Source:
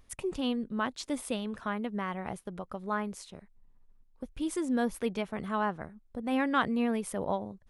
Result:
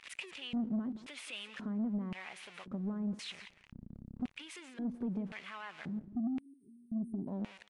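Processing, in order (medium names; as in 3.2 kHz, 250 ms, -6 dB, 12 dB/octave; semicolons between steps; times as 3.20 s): jump at every zero crossing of -38.5 dBFS; 3.20–4.36 s: tone controls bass +11 dB, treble 0 dB; peak limiter -25.5 dBFS, peak gain reduction 11 dB; compression 4:1, threshold -34 dBFS, peak gain reduction 5.5 dB; 6.07–7.27 s: spectral selection erased 420–8300 Hz; on a send: delay 176 ms -15 dB; on the sum: LFO band-pass square 0.94 Hz 230–2500 Hz; saturation -35.5 dBFS, distortion -17 dB; trim +7 dB; MP3 64 kbps 24 kHz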